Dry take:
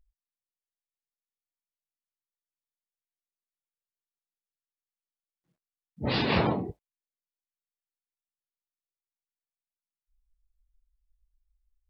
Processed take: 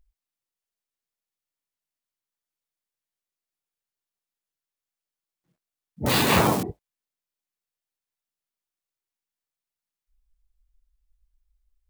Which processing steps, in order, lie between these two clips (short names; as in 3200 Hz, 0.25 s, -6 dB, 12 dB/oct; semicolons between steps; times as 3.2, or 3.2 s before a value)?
6.06–6.63 switching spikes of -21 dBFS; dynamic EQ 1200 Hz, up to +5 dB, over -43 dBFS, Q 1.3; gain +4 dB